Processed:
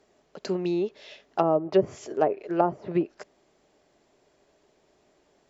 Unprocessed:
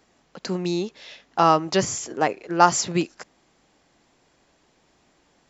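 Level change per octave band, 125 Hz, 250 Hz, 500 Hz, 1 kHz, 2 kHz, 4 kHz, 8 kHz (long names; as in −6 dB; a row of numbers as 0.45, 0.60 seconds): −5.5 dB, −2.0 dB, +0.5 dB, −9.0 dB, −12.5 dB, −14.0 dB, can't be measured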